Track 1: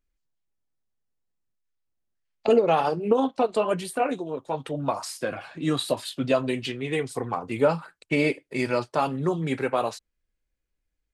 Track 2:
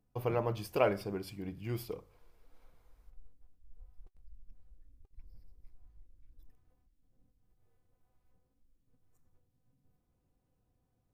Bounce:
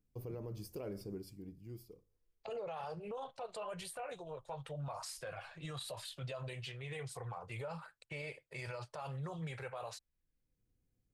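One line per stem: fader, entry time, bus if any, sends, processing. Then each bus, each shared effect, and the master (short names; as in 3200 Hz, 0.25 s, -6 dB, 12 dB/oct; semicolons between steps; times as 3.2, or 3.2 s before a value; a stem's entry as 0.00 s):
-6.0 dB, 0.00 s, no send, EQ curve 140 Hz 0 dB, 260 Hz -25 dB, 520 Hz -3 dB
-4.5 dB, 0.00 s, no send, band shelf 1500 Hz -12.5 dB 2.9 oct; auto duck -16 dB, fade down 1.30 s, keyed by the first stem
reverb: off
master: limiter -35.5 dBFS, peak gain reduction 16 dB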